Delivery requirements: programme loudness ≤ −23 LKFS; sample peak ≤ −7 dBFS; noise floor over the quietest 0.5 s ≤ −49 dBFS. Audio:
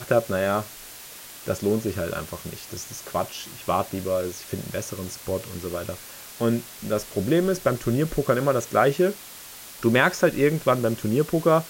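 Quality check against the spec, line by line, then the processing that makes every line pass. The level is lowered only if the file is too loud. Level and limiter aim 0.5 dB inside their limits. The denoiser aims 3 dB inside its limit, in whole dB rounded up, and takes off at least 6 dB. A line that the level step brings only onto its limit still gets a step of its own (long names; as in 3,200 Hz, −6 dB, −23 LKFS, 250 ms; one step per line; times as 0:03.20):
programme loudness −25.0 LKFS: in spec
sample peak −6.0 dBFS: out of spec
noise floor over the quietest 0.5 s −42 dBFS: out of spec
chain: broadband denoise 10 dB, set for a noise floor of −42 dBFS
brickwall limiter −7.5 dBFS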